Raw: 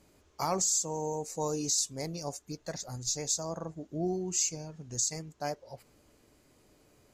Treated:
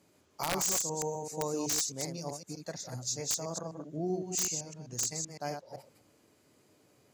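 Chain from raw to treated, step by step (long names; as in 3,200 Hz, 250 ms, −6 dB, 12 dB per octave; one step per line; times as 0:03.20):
delay that plays each chunk backwards 128 ms, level −5 dB
high-pass filter 96 Hz 24 dB per octave
wrap-around overflow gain 19.5 dB
level −2.5 dB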